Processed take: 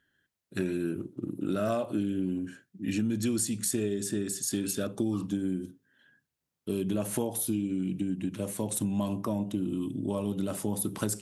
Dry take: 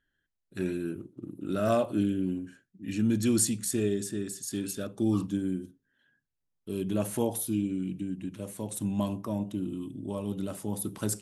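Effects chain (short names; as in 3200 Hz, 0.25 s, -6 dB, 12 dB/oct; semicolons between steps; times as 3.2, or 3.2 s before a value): HPF 85 Hz; compressor 6:1, threshold -33 dBFS, peak gain reduction 11.5 dB; gain +6.5 dB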